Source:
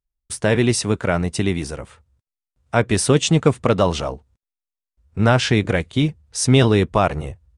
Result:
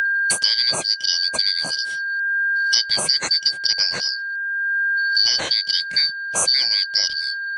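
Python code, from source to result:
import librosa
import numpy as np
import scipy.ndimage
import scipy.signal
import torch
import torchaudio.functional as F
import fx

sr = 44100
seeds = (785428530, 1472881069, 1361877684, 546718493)

y = fx.band_shuffle(x, sr, order='4321')
y = fx.peak_eq(y, sr, hz=160.0, db=12.0, octaves=0.99)
y = y + 10.0 ** (-29.0 / 20.0) * np.sin(2.0 * np.pi * 1600.0 * np.arange(len(y)) / sr)
y = fx.peak_eq(y, sr, hz=590.0, db=11.0, octaves=1.5)
y = fx.band_squash(y, sr, depth_pct=100)
y = F.gain(torch.from_numpy(y), -3.5).numpy()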